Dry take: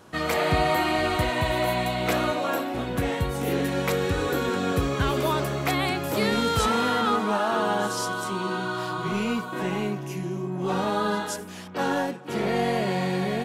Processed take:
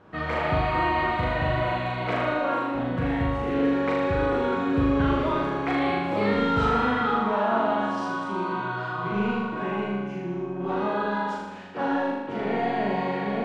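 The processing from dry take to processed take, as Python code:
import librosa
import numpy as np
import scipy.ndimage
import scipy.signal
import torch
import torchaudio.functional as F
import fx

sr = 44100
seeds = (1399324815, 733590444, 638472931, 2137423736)

y = scipy.signal.sosfilt(scipy.signal.butter(2, 2200.0, 'lowpass', fs=sr, output='sos'), x)
y = fx.room_flutter(y, sr, wall_m=6.8, rt60_s=1.1)
y = F.gain(torch.from_numpy(y), -3.0).numpy()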